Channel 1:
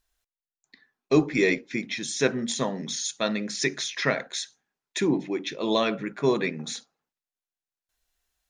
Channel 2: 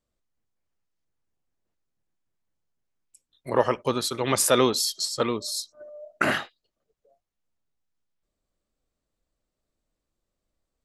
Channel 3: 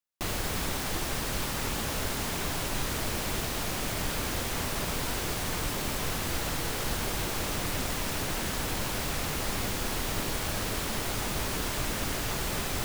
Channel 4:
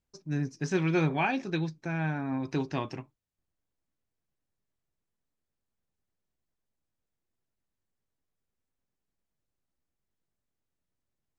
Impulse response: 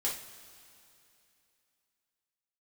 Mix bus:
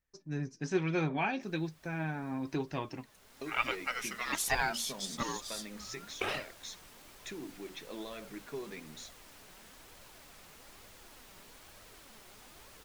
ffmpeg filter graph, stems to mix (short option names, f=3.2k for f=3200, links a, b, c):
-filter_complex "[0:a]acompressor=threshold=-27dB:ratio=6,adelay=2300,volume=-9dB[a];[1:a]aeval=exprs='val(0)*sin(2*PI*1200*n/s+1200*0.5/0.27*sin(2*PI*0.27*n/s))':c=same,volume=-4.5dB[b];[2:a]lowshelf=f=350:g=-7,adelay=1200,volume=-17.5dB[c];[3:a]volume=0dB,asplit=2[d][e];[e]apad=whole_len=619535[f];[c][f]sidechaincompress=threshold=-40dB:ratio=6:attack=7.3:release=639[g];[a][b][g][d]amix=inputs=4:normalize=0,flanger=delay=1.4:depth=4.1:regen=56:speed=1.1:shape=triangular"